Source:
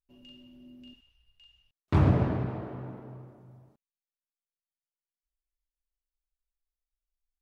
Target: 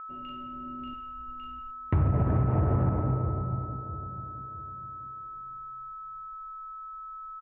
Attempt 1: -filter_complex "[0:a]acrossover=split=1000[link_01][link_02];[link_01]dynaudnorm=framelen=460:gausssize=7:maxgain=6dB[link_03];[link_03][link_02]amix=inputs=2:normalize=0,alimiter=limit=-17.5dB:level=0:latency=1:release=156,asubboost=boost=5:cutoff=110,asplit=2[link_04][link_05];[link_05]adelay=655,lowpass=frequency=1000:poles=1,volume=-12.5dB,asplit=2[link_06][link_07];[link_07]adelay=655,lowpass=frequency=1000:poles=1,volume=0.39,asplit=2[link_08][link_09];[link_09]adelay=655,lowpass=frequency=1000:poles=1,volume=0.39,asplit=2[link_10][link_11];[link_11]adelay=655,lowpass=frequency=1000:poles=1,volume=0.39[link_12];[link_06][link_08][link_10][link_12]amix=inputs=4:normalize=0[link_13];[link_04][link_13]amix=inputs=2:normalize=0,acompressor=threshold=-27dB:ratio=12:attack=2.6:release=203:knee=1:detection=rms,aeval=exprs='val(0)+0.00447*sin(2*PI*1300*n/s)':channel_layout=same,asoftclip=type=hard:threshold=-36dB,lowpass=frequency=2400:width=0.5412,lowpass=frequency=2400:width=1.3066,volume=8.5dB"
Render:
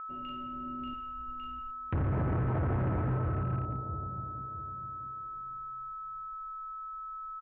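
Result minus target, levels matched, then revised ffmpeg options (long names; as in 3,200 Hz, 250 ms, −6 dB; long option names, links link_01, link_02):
hard clipping: distortion +20 dB
-filter_complex "[0:a]acrossover=split=1000[link_01][link_02];[link_01]dynaudnorm=framelen=460:gausssize=7:maxgain=6dB[link_03];[link_03][link_02]amix=inputs=2:normalize=0,alimiter=limit=-17.5dB:level=0:latency=1:release=156,asubboost=boost=5:cutoff=110,asplit=2[link_04][link_05];[link_05]adelay=655,lowpass=frequency=1000:poles=1,volume=-12.5dB,asplit=2[link_06][link_07];[link_07]adelay=655,lowpass=frequency=1000:poles=1,volume=0.39,asplit=2[link_08][link_09];[link_09]adelay=655,lowpass=frequency=1000:poles=1,volume=0.39,asplit=2[link_10][link_11];[link_11]adelay=655,lowpass=frequency=1000:poles=1,volume=0.39[link_12];[link_06][link_08][link_10][link_12]amix=inputs=4:normalize=0[link_13];[link_04][link_13]amix=inputs=2:normalize=0,acompressor=threshold=-27dB:ratio=12:attack=2.6:release=203:knee=1:detection=rms,aeval=exprs='val(0)+0.00447*sin(2*PI*1300*n/s)':channel_layout=same,asoftclip=type=hard:threshold=-26dB,lowpass=frequency=2400:width=0.5412,lowpass=frequency=2400:width=1.3066,volume=8.5dB"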